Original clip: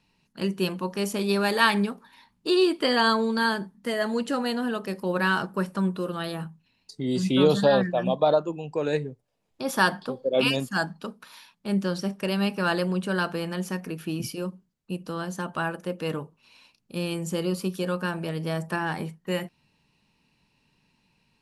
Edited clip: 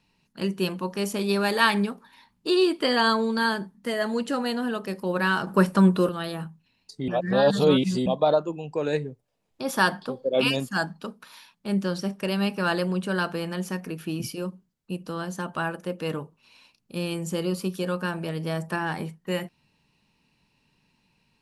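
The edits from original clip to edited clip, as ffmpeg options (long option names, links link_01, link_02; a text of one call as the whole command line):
ffmpeg -i in.wav -filter_complex "[0:a]asplit=5[link_01][link_02][link_03][link_04][link_05];[link_01]atrim=end=5.472[link_06];[link_02]atrim=start=5.468:end=6.092,asetpts=PTS-STARTPTS,volume=8dB[link_07];[link_03]atrim=start=6.088:end=7.082[link_08];[link_04]atrim=start=7.078:end=8.062,asetpts=PTS-STARTPTS,areverse[link_09];[link_05]atrim=start=8.058[link_10];[link_06][link_07]acrossfade=duration=0.004:curve1=hsin:curve2=hsin[link_11];[link_11][link_08]acrossfade=duration=0.004:curve1=hsin:curve2=hsin[link_12];[link_12][link_09]acrossfade=duration=0.004:curve1=hsin:curve2=hsin[link_13];[link_13][link_10]acrossfade=duration=0.004:curve1=hsin:curve2=hsin" out.wav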